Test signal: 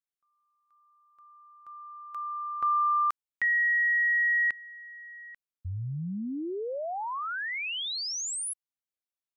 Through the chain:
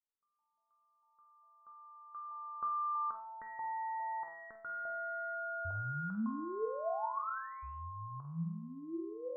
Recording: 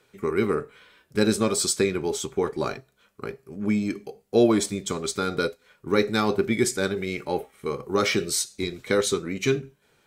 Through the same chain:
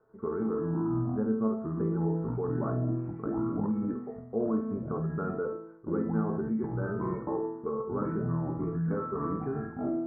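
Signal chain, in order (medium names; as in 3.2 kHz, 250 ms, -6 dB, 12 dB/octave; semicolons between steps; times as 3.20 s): feedback comb 220 Hz, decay 0.62 s, harmonics all, mix 90%; ever faster or slower copies 86 ms, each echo -5 st, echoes 2, each echo -6 dB; in parallel at +2 dB: compressor with a negative ratio -43 dBFS, ratio -1; on the sum: steep low-pass 1.4 kHz 48 dB/octave; flutter echo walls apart 8.3 m, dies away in 0.26 s; trim +2.5 dB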